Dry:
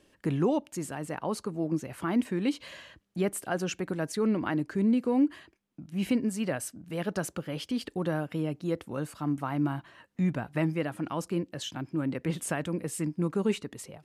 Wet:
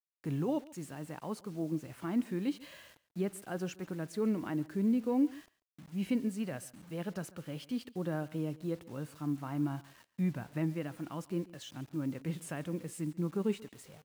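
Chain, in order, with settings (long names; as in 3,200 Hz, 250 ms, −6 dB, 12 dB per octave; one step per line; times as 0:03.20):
harmonic and percussive parts rebalanced percussive −7 dB
bit reduction 9 bits
single-tap delay 140 ms −21 dB
level −4.5 dB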